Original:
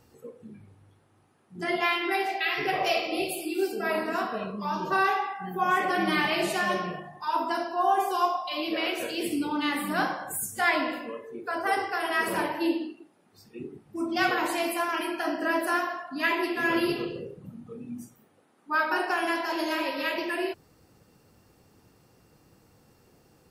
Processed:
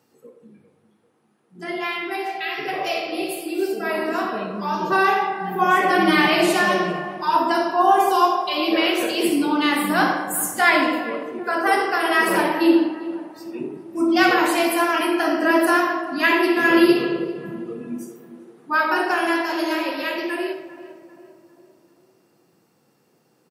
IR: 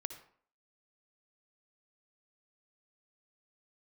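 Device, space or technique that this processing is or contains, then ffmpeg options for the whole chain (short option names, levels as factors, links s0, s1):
far laptop microphone: -filter_complex "[1:a]atrim=start_sample=2205[s0];[0:a][s0]afir=irnorm=-1:irlink=0,highpass=f=150:w=0.5412,highpass=f=150:w=1.3066,dynaudnorm=f=420:g=21:m=3.76,asplit=2[s1][s2];[s2]adelay=397,lowpass=f=1400:p=1,volume=0.2,asplit=2[s3][s4];[s4]adelay=397,lowpass=f=1400:p=1,volume=0.52,asplit=2[s5][s6];[s6]adelay=397,lowpass=f=1400:p=1,volume=0.52,asplit=2[s7][s8];[s8]adelay=397,lowpass=f=1400:p=1,volume=0.52,asplit=2[s9][s10];[s10]adelay=397,lowpass=f=1400:p=1,volume=0.52[s11];[s1][s3][s5][s7][s9][s11]amix=inputs=6:normalize=0"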